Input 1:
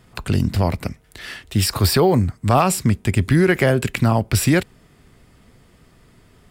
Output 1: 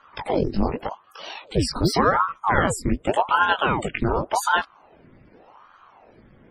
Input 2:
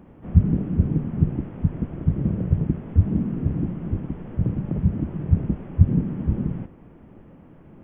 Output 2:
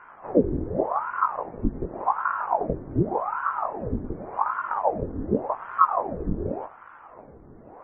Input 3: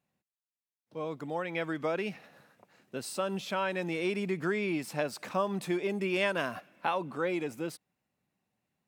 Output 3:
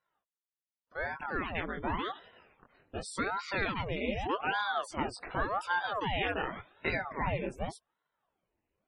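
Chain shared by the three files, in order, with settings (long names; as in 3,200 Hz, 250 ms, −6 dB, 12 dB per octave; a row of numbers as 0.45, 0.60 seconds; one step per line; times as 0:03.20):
in parallel at −0.5 dB: downward compressor 5 to 1, threshold −30 dBFS
on the sum: chorus effect 1.3 Hz, delay 18.5 ms, depth 3.8 ms
spectral peaks only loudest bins 64
ring modulator whose carrier an LFO sweeps 670 Hz, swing 85%, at 0.87 Hz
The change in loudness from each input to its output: −4.0, −3.0, −1.0 LU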